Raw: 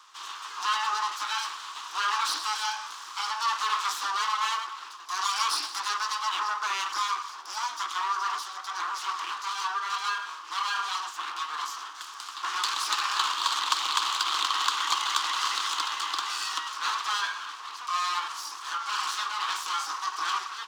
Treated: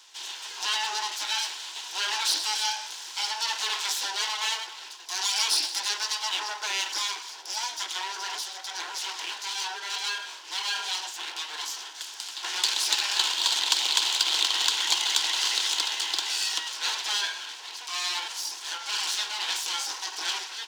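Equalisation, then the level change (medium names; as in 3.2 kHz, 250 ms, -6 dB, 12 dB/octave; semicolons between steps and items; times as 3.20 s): static phaser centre 490 Hz, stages 4; +6.5 dB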